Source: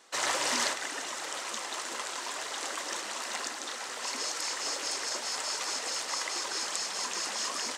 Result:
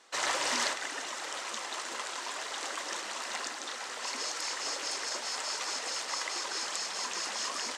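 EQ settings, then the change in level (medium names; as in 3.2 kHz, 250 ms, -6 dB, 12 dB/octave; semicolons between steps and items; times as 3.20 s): bass shelf 450 Hz -3.5 dB; treble shelf 11 kHz -11.5 dB; 0.0 dB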